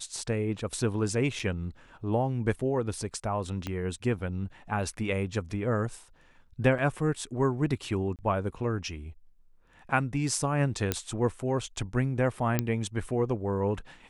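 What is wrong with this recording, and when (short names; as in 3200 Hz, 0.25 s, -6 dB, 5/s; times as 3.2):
1.39–1.4 gap 5.1 ms
3.67 pop -19 dBFS
6.78–6.79 gap 6.4 ms
8.16–8.19 gap 28 ms
10.92 pop -10 dBFS
12.59 pop -11 dBFS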